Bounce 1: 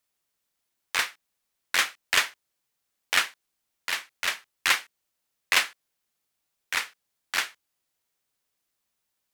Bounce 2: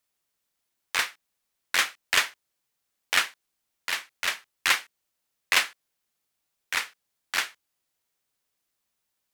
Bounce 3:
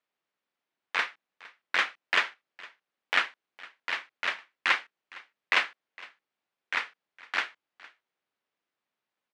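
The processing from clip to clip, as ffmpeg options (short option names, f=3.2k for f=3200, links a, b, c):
-af anull
-af "highpass=200,lowpass=2.7k,aecho=1:1:460:0.0841"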